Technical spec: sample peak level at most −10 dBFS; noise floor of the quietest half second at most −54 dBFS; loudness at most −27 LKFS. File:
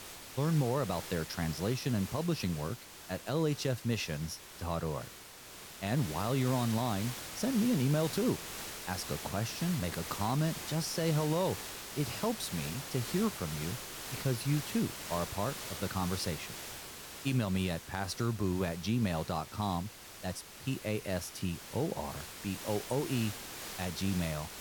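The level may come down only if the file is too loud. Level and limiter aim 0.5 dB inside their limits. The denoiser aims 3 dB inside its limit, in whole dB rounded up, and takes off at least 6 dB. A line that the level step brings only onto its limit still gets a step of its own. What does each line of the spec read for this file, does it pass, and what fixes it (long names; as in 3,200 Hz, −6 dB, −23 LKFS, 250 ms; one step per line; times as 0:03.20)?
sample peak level −19.0 dBFS: in spec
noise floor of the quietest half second −51 dBFS: out of spec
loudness −34.5 LKFS: in spec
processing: broadband denoise 6 dB, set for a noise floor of −51 dBFS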